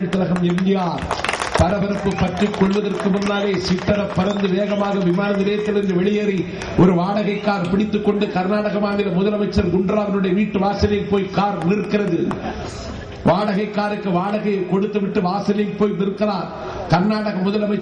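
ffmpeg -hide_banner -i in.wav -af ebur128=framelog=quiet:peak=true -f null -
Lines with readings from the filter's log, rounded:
Integrated loudness:
  I:         -19.3 LUFS
  Threshold: -29.3 LUFS
Loudness range:
  LRA:         2.1 LU
  Threshold: -39.3 LUFS
  LRA low:   -20.5 LUFS
  LRA high:  -18.4 LUFS
True peak:
  Peak:       -2.8 dBFS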